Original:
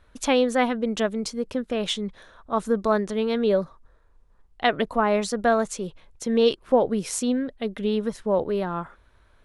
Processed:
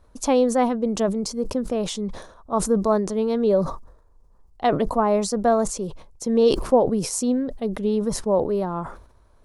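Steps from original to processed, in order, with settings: high-order bell 2.3 kHz -10.5 dB; decay stretcher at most 87 dB/s; trim +2 dB

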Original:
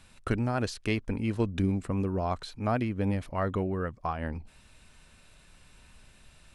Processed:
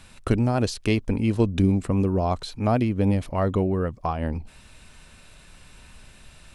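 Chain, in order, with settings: dynamic bell 1.6 kHz, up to -8 dB, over -49 dBFS, Q 1.2; trim +7.5 dB

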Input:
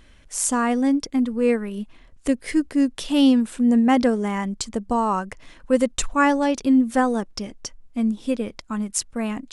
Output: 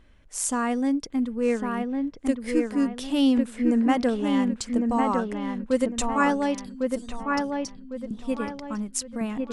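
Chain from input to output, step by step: 6.60–8.11 s: elliptic band-stop 160–4000 Hz; feedback echo behind a low-pass 1103 ms, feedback 36%, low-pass 2.8 kHz, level -3.5 dB; tape noise reduction on one side only decoder only; trim -4.5 dB

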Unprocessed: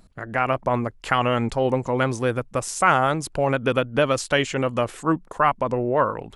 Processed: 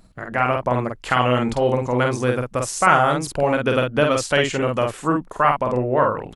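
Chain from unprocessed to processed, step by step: doubling 48 ms -3.5 dB; trim +1 dB

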